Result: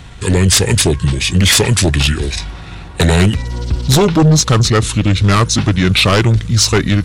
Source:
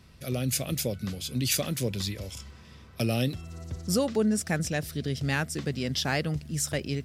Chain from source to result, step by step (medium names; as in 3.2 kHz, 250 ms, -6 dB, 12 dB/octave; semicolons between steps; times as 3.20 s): sine folder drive 10 dB, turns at -12 dBFS; pitch shift -5.5 st; trim +6.5 dB